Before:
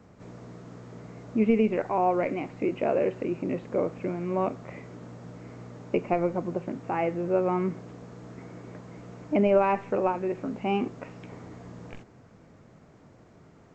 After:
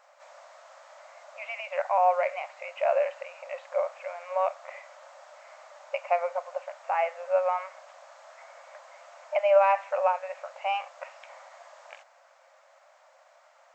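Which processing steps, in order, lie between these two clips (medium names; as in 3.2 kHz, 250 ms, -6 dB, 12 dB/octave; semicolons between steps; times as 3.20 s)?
brick-wall FIR high-pass 520 Hz; trim +3 dB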